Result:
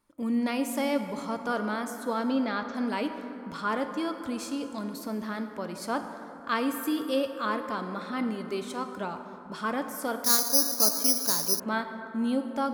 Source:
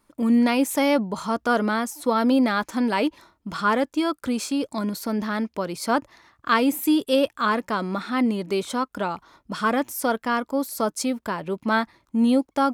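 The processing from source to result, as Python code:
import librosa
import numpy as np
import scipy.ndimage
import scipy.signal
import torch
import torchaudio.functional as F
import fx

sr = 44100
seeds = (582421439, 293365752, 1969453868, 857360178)

y = fx.steep_lowpass(x, sr, hz=5800.0, slope=36, at=(2.13, 2.75))
y = fx.rev_plate(y, sr, seeds[0], rt60_s=3.5, hf_ratio=0.4, predelay_ms=0, drr_db=6.5)
y = fx.resample_bad(y, sr, factor=8, down='filtered', up='zero_stuff', at=(10.24, 11.6))
y = y * librosa.db_to_amplitude(-8.5)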